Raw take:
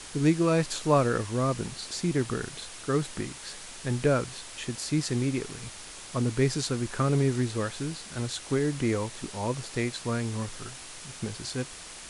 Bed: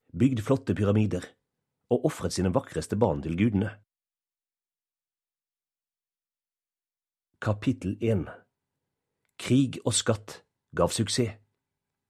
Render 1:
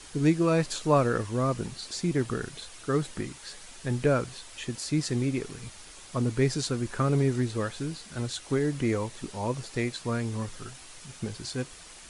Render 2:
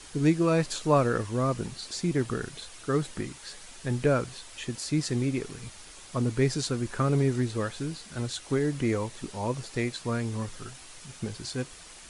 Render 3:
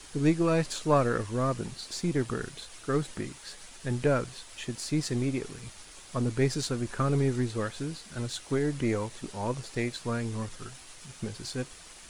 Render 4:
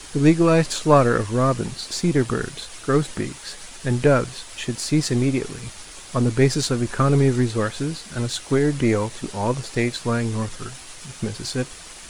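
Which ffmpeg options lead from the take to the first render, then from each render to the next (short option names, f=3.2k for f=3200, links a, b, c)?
-af "afftdn=nr=6:nf=-44"
-af anull
-af "aeval=exprs='if(lt(val(0),0),0.708*val(0),val(0))':c=same"
-af "volume=9dB"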